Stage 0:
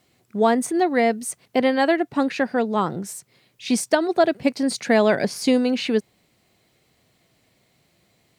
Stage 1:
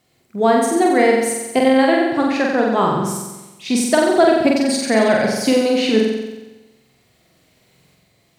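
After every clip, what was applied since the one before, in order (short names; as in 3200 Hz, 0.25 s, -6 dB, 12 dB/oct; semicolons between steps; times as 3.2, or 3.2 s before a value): tremolo saw up 0.63 Hz, depth 45%; on a send: flutter echo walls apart 7.8 m, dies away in 1.1 s; on the sum: gain +4 dB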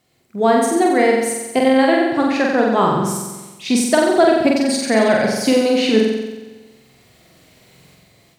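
AGC gain up to 8 dB; gain -1 dB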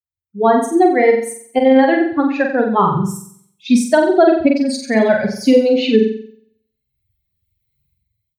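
per-bin expansion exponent 2; high shelf 3000 Hz -9.5 dB; maximiser +8.5 dB; gain -1 dB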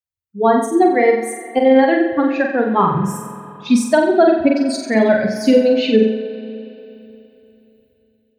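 spring tank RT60 3.2 s, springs 36/59 ms, chirp 30 ms, DRR 11 dB; gain -1 dB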